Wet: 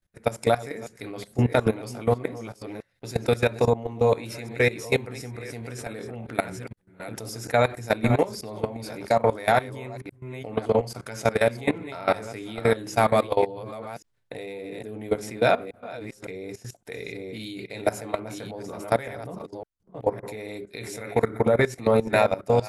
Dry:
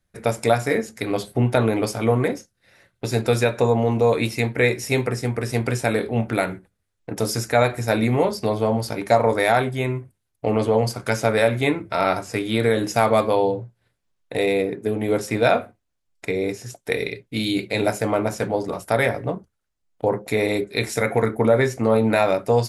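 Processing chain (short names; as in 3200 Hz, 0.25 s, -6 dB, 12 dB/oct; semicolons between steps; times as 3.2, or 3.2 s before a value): reverse delay 0.561 s, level -9 dB; level quantiser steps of 18 dB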